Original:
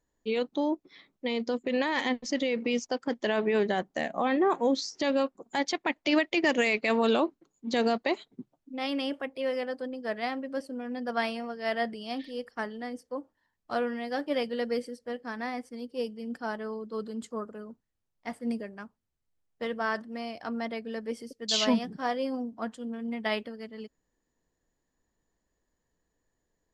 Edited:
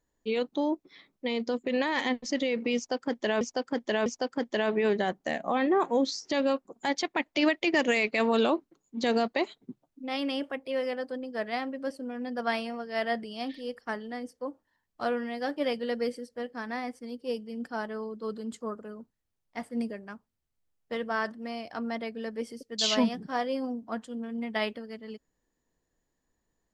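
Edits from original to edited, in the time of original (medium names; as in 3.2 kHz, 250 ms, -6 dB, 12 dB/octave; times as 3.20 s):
2.76–3.41 s: loop, 3 plays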